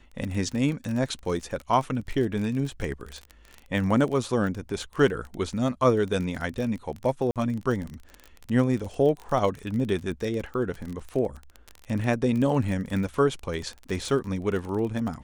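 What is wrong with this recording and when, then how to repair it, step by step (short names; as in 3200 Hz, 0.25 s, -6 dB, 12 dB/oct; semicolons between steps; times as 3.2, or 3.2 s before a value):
crackle 28/s -30 dBFS
7.31–7.36 gap 47 ms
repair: de-click; interpolate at 7.31, 47 ms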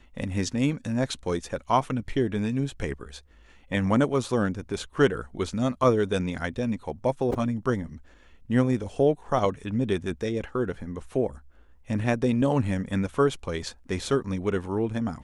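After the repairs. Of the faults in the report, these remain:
none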